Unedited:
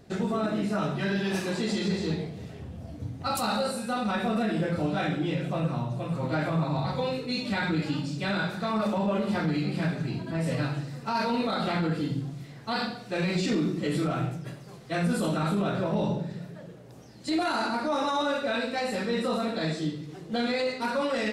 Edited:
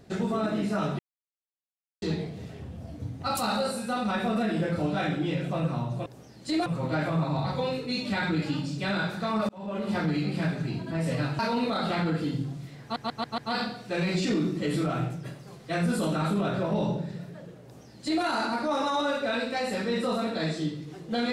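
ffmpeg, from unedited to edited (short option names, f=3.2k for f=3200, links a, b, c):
-filter_complex "[0:a]asplit=11[a][b][c][d][e][f][g][h][i][j][k];[a]atrim=end=0.99,asetpts=PTS-STARTPTS,afade=t=out:st=0.986:d=0.004:c=hsin[l];[b]atrim=start=0.99:end=2.02,asetpts=PTS-STARTPTS,volume=0[m];[c]atrim=start=2.02:end=6.062,asetpts=PTS-STARTPTS,afade=t=in:d=0.004:c=hsin[n];[d]atrim=start=16.848:end=17.452[o];[e]atrim=start=6.058:end=8.89,asetpts=PTS-STARTPTS,afade=t=out:st=2.828:d=0.004:c=hsin[p];[f]atrim=start=8.89:end=10.792,asetpts=PTS-STARTPTS,afade=t=in:d=0.48[q];[g]atrim=start=11.158:end=12.732[r];[h]atrim=start=12.588:end=12.732[s];[i]atrim=start=12.588:end=12.732[t];[j]atrim=start=12.588:end=12.732[u];[k]atrim=start=12.588[v];[l][m][n]concat=n=3:v=0:a=1[w];[w][o]acrossfade=d=0.004:c1=hsin:c2=hsin[x];[p][q]concat=n=2:v=0:a=1[y];[x][y]acrossfade=d=0.004:c1=hsin:c2=hsin[z];[z][r]acrossfade=d=0.004:c1=hsin:c2=hsin[aa];[aa][s]acrossfade=d=0.004:c1=hsin:c2=hsin[ab];[ab][t]acrossfade=d=0.004:c1=hsin:c2=hsin[ac];[ac][u]acrossfade=d=0.004:c1=hsin:c2=hsin[ad];[ad][v]acrossfade=d=0.004:c1=hsin:c2=hsin"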